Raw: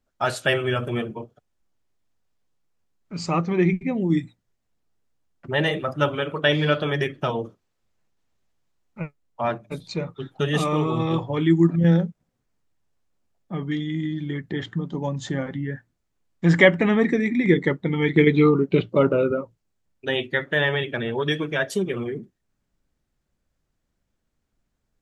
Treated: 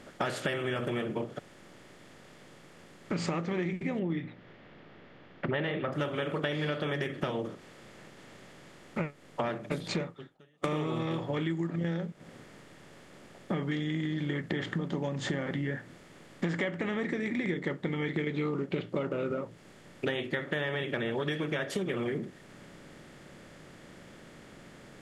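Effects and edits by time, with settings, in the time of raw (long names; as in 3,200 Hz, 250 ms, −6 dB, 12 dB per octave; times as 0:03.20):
0:03.99–0:05.93: inverse Chebyshev low-pass filter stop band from 7,700 Hz, stop band 50 dB
0:10.01–0:10.64: fade out exponential
whole clip: compressor on every frequency bin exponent 0.6; downward compressor 10 to 1, threshold −29 dBFS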